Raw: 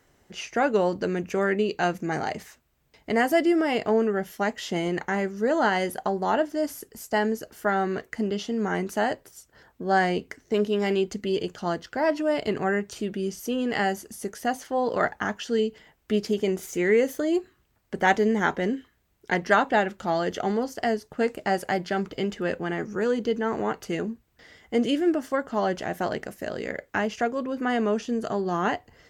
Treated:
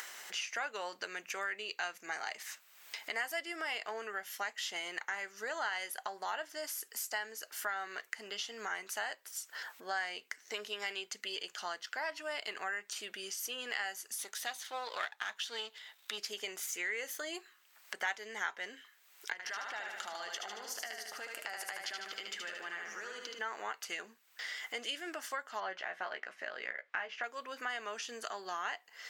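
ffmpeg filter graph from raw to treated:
-filter_complex "[0:a]asettb=1/sr,asplit=3[a][b][c];[a]atrim=end=14.184[d];[b]atrim=start=14.18:end=16.18,asetpts=PTS-STARTPTS,afade=t=in:d=0.004:c=qsin,afade=t=out:st=1.996:d=0.004:c=qsin,aeval=exprs='if(lt(val(0),0),0.447*val(0),val(0))':c=same,equalizer=f=3.7k:w=4.9:g=11.5[e];[c]atrim=start=16.176[f];[d][e]acrossfade=d=0.004:c1=hsin:c2=qsin[g];[g][f]acrossfade=d=0.004:c1=qsin:c2=hsin,asettb=1/sr,asplit=3[h][i][j];[h]atrim=end=19.324[k];[i]atrim=start=19.32:end=23.39,asetpts=PTS-STARTPTS,afade=t=in:d=0.004:c=qsin,afade=t=out:st=4.066:d=0.004:c=qsin,acompressor=threshold=-33dB:ratio=5:attack=3.2:release=140:knee=1:detection=peak,aecho=1:1:75|150|225|300|375|450|525:0.631|0.347|0.191|0.105|0.0577|0.0318|0.0175,atrim=end_sample=179487[l];[j]atrim=start=23.386[m];[k][l]acrossfade=d=0.004:c1=hsin:c2=qsin[n];[n][m]acrossfade=d=0.004:c1=qsin:c2=hsin,asettb=1/sr,asplit=3[o][p][q];[o]atrim=end=25.604[r];[p]atrim=start=25.6:end=27.24,asetpts=PTS-STARTPTS,afade=t=in:d=0.004:c=qsin,afade=t=out:st=1.636:d=0.004:c=qsin,lowpass=2.6k,asplit=2[s][t];[t]adelay=16,volume=-7dB[u];[s][u]amix=inputs=2:normalize=0,atrim=end_sample=72324[v];[q]atrim=start=27.236[w];[r][v]acrossfade=d=0.004:c1=hsin:c2=qsin[x];[x][w]acrossfade=d=0.004:c1=qsin:c2=hsin,acompressor=mode=upward:threshold=-31dB:ratio=2.5,highpass=1.4k,acompressor=threshold=-43dB:ratio=2.5,volume=4dB"

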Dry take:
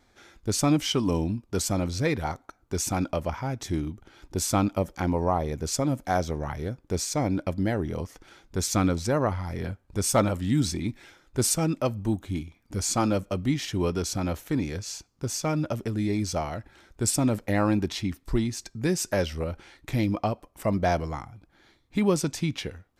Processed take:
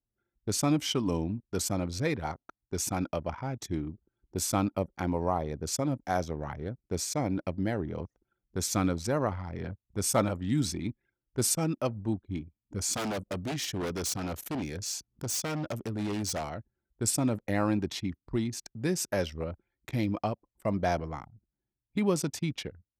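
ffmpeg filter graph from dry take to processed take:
-filter_complex "[0:a]asettb=1/sr,asplit=3[a][b][c];[a]atrim=end=12.934[d];[b]atrim=start=12.93:end=16.5,asetpts=PTS-STARTPTS,afade=t=in:d=0.004:c=qsin,afade=t=out:st=3.566:d=0.004:c=qsin,highshelf=f=3.6k:g=6.5,acompressor=mode=upward:threshold=-30dB:ratio=2.5:attack=3.2:release=140:knee=2.83:detection=peak,aeval=exprs='0.0708*(abs(mod(val(0)/0.0708+3,4)-2)-1)':c=same[e];[c]atrim=start=16.496[f];[d][e]acrossfade=d=0.004:c1=hsin:c2=qsin[g];[g][f]acrossfade=d=0.004:c1=qsin:c2=hsin,highpass=78,anlmdn=1,highshelf=f=11k:g=4.5,volume=-4dB"

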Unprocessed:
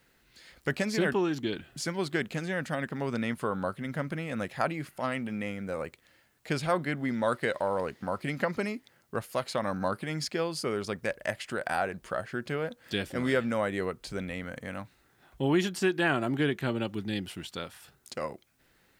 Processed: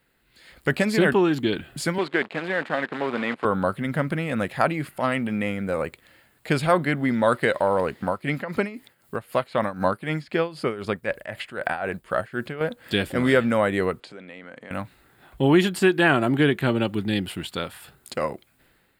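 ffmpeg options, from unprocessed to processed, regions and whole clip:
-filter_complex "[0:a]asettb=1/sr,asplit=3[a][b][c];[a]atrim=end=1.984[d];[b]atrim=start=1.98:end=3.45,asetpts=PTS-STARTPTS,afade=t=in:d=0.004:c=qsin,afade=t=out:st=1.466:d=0.004:c=qsin,lowshelf=f=370:g=-3,acrusher=bits=7:dc=4:mix=0:aa=0.000001,highpass=260,lowpass=3.1k[e];[c]atrim=start=3.446[f];[d][e]acrossfade=d=0.004:c1=hsin:c2=qsin[g];[g][f]acrossfade=d=0.004:c1=qsin:c2=hsin,asettb=1/sr,asplit=3[h][i][j];[h]atrim=end=8.074[k];[i]atrim=start=8.07:end=12.61,asetpts=PTS-STARTPTS,afade=t=in:d=0.004:c=qsin,afade=t=out:st=4.536:d=0.004:c=qsin,acrossover=split=3400[l][m];[m]acompressor=threshold=-59dB:ratio=4:attack=1:release=60[n];[l][n]amix=inputs=2:normalize=0,tremolo=f=3.9:d=0.79,highshelf=f=3.8k:g=7[o];[j]atrim=start=12.606[p];[k][o]acrossfade=d=0.004:c1=hsin:c2=qsin[q];[q][p]acrossfade=d=0.004:c1=qsin:c2=hsin,asettb=1/sr,asplit=3[r][s][t];[r]atrim=end=14.004[u];[s]atrim=start=14:end=14.71,asetpts=PTS-STARTPTS,afade=t=in:d=0.004:c=qsin,afade=t=out:st=0.706:d=0.004:c=qsin,acompressor=threshold=-44dB:ratio=6:attack=3.2:release=140:knee=1:detection=peak,highpass=250,lowpass=5.5k[v];[t]atrim=start=14.706[w];[u][v]acrossfade=d=0.004:c1=hsin:c2=qsin[x];[x][w]acrossfade=d=0.004:c1=qsin:c2=hsin,equalizer=f=5.9k:t=o:w=0.38:g=-12.5,dynaudnorm=f=190:g=5:m=10dB,volume=-1.5dB"

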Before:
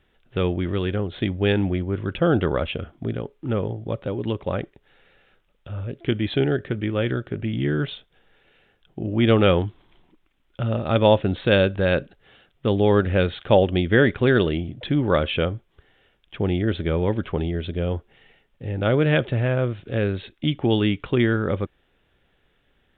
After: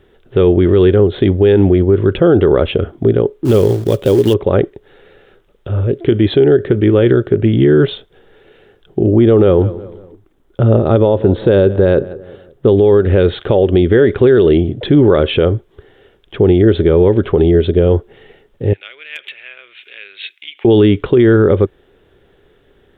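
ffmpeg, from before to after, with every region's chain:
-filter_complex "[0:a]asettb=1/sr,asplit=3[a][b][c];[a]atrim=end=3.454[d];[b]atrim=start=3.45:end=4.34,asetpts=PTS-STARTPTS,afade=t=in:d=0.004:c=qsin,afade=t=out:st=0.886:d=0.004:c=qsin,highshelf=f=2.2k:t=q:w=1.5:g=7.5,acrusher=bits=4:mode=log:mix=0:aa=0.000001[e];[c]atrim=start=4.336[f];[d][e]acrossfade=d=0.004:c1=hsin:c2=qsin[g];[g][f]acrossfade=d=0.004:c1=qsin:c2=hsin,asettb=1/sr,asplit=3[h][i][j];[h]atrim=end=9.114[k];[i]atrim=start=9.11:end=12.69,asetpts=PTS-STARTPTS,afade=t=in:d=0.004:c=qsin,afade=t=out:st=3.576:d=0.004:c=qsin,equalizer=f=2.8k:w=0.8:g=-7.5,asplit=2[l][m];[m]adelay=181,lowpass=f=2.3k:p=1,volume=-23dB,asplit=2[n][o];[o]adelay=181,lowpass=f=2.3k:p=1,volume=0.44,asplit=2[p][q];[q]adelay=181,lowpass=f=2.3k:p=1,volume=0.44[r];[l][n][p][r]amix=inputs=4:normalize=0,atrim=end_sample=157878[s];[j]atrim=start=12.686[t];[k][s]acrossfade=d=0.004:c1=hsin:c2=qsin[u];[u][t]acrossfade=d=0.004:c1=qsin:c2=hsin,asettb=1/sr,asplit=3[v][w][x];[v]atrim=end=18.734[y];[w]atrim=start=18.73:end=20.65,asetpts=PTS-STARTPTS,afade=t=in:d=0.004:c=qsin,afade=t=out:st=1.916:d=0.004:c=qsin,acompressor=threshold=-33dB:ratio=5:attack=3.2:release=140:knee=1:detection=peak,highpass=f=2.4k:t=q:w=4.4,asoftclip=type=hard:threshold=-22dB[z];[x]atrim=start=20.646[aa];[y][z]acrossfade=d=0.004:c1=hsin:c2=qsin[ab];[ab][aa]acrossfade=d=0.004:c1=qsin:c2=hsin,equalizer=f=100:t=o:w=0.67:g=4,equalizer=f=400:t=o:w=0.67:g=12,equalizer=f=2.5k:t=o:w=0.67:g=-5,acompressor=threshold=-12dB:ratio=6,alimiter=level_in=11.5dB:limit=-1dB:release=50:level=0:latency=1,volume=-1dB"

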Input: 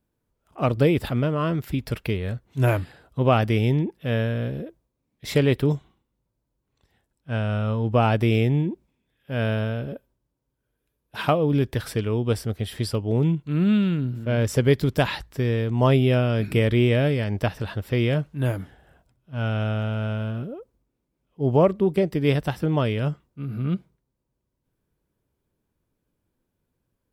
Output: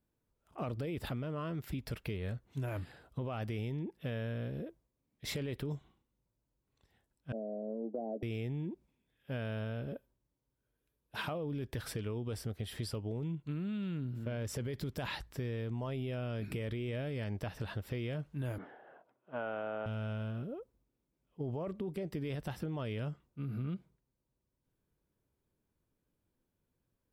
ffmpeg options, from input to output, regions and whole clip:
-filter_complex "[0:a]asettb=1/sr,asplit=3[a][b][c];[a]atrim=end=7.324[d];[b]atrim=start=7.32:end=8.23,asetpts=PTS-STARTPTS,afade=t=in:d=0.004:c=qsin,afade=t=out:st=0.906:d=0.004:c=qsin,asuperpass=centerf=400:order=12:qfactor=0.84,asplit=2[e][f];[f]adelay=14,volume=-12dB[g];[e][g]amix=inputs=2:normalize=0,atrim=end_sample=40131[h];[c]atrim=start=8.226[i];[d][h]acrossfade=d=0.004:c1=hsin:c2=qsin[j];[j][i]acrossfade=d=0.004:c1=qsin:c2=hsin,asettb=1/sr,asplit=3[k][l][m];[k]atrim=end=18.584[n];[l]atrim=start=18.58:end=19.86,asetpts=PTS-STARTPTS,afade=t=in:d=0.004:c=qsin,afade=t=out:st=1.276:d=0.004:c=qsin,highpass=360,lowpass=2.2k,equalizer=f=610:w=0.34:g=10[o];[m]atrim=start=19.856[p];[n][o]acrossfade=d=0.004:c1=hsin:c2=qsin[q];[q][p]acrossfade=d=0.004:c1=qsin:c2=hsin,alimiter=limit=-18.5dB:level=0:latency=1:release=12,acompressor=threshold=-29dB:ratio=6,volume=-6dB"

